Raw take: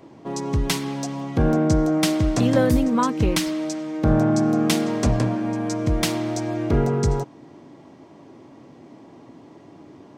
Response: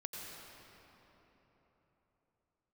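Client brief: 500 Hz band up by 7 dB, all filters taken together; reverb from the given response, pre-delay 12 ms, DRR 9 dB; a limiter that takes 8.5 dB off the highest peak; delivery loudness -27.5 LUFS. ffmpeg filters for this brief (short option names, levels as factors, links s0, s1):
-filter_complex "[0:a]equalizer=f=500:t=o:g=8.5,alimiter=limit=0.316:level=0:latency=1,asplit=2[s0][s1];[1:a]atrim=start_sample=2205,adelay=12[s2];[s1][s2]afir=irnorm=-1:irlink=0,volume=0.398[s3];[s0][s3]amix=inputs=2:normalize=0,volume=0.447"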